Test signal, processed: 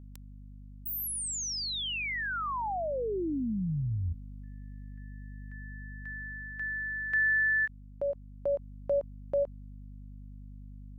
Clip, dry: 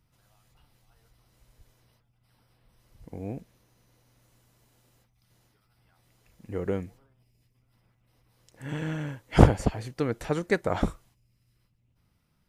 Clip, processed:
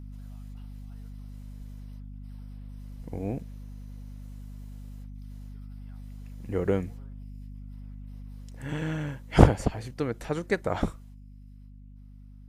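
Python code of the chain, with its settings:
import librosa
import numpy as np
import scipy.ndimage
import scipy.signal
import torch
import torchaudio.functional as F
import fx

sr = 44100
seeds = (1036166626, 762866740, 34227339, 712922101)

y = fx.add_hum(x, sr, base_hz=50, snr_db=13)
y = fx.rider(y, sr, range_db=10, speed_s=2.0)
y = fx.end_taper(y, sr, db_per_s=530.0)
y = y * 10.0 ** (-1.5 / 20.0)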